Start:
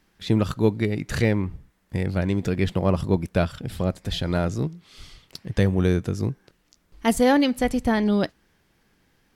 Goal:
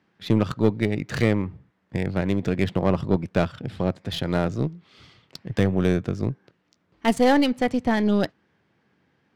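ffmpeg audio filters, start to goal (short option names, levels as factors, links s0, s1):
-af "highpass=f=93:w=0.5412,highpass=f=93:w=1.3066,aeval=exprs='0.531*(cos(1*acos(clip(val(0)/0.531,-1,1)))-cos(1*PI/2))+0.0335*(cos(6*acos(clip(val(0)/0.531,-1,1)))-cos(6*PI/2))':c=same,adynamicsmooth=sensitivity=5.5:basefreq=3400"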